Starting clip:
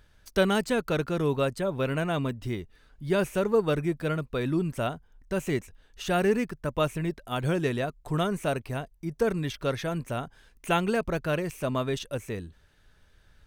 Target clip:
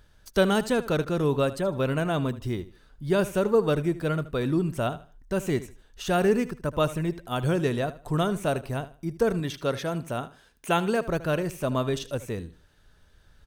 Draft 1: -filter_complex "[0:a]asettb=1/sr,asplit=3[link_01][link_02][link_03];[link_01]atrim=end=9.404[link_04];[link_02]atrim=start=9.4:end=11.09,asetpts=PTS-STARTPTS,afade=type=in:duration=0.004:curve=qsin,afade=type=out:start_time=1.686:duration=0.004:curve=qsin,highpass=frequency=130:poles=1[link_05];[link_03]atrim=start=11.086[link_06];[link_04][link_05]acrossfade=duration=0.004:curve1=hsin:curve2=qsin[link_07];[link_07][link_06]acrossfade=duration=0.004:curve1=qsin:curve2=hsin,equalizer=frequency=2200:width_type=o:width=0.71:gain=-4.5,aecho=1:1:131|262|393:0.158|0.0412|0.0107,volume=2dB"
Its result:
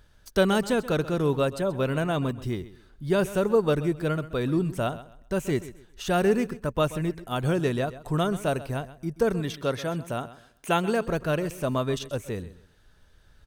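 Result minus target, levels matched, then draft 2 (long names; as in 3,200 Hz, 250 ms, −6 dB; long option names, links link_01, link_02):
echo 54 ms late
-filter_complex "[0:a]asettb=1/sr,asplit=3[link_01][link_02][link_03];[link_01]atrim=end=9.404[link_04];[link_02]atrim=start=9.4:end=11.09,asetpts=PTS-STARTPTS,afade=type=in:duration=0.004:curve=qsin,afade=type=out:start_time=1.686:duration=0.004:curve=qsin,highpass=frequency=130:poles=1[link_05];[link_03]atrim=start=11.086[link_06];[link_04][link_05]acrossfade=duration=0.004:curve1=hsin:curve2=qsin[link_07];[link_07][link_06]acrossfade=duration=0.004:curve1=qsin:curve2=hsin,equalizer=frequency=2200:width_type=o:width=0.71:gain=-4.5,aecho=1:1:77|154|231:0.158|0.0412|0.0107,volume=2dB"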